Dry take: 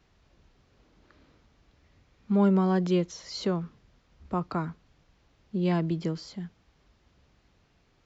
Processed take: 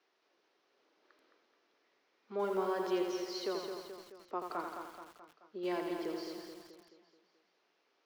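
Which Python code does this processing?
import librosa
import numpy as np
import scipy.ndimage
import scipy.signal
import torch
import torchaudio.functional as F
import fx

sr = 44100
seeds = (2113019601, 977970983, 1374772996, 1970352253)

p1 = scipy.signal.sosfilt(scipy.signal.cheby1(3, 1.0, [360.0, 5700.0], 'bandpass', fs=sr, output='sos'), x)
p2 = p1 + fx.echo_feedback(p1, sr, ms=215, feedback_pct=52, wet_db=-7.0, dry=0)
p3 = fx.echo_crushed(p2, sr, ms=84, feedback_pct=55, bits=8, wet_db=-5.0)
y = p3 * librosa.db_to_amplitude(-6.5)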